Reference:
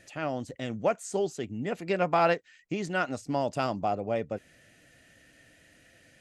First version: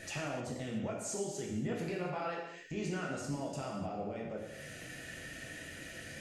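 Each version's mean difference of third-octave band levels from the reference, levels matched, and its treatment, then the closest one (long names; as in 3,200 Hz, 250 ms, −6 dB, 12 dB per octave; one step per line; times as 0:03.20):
12.5 dB: downward compressor, threshold −42 dBFS, peak gain reduction 21 dB
brickwall limiter −41 dBFS, peak gain reduction 11 dB
reverb whose tail is shaped and stops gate 330 ms falling, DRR −3.5 dB
level +7 dB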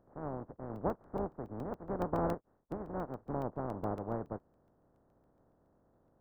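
9.0 dB: compressing power law on the bin magnitudes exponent 0.19
Gaussian smoothing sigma 9.9 samples
regular buffer underruns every 0.14 s, samples 64, zero, from 0:00.76
level +1 dB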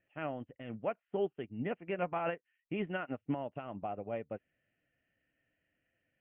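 6.5 dB: Butterworth low-pass 3,100 Hz 96 dB per octave
brickwall limiter −24.5 dBFS, peak gain reduction 11.5 dB
expander for the loud parts 2.5 to 1, over −45 dBFS
level +1 dB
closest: third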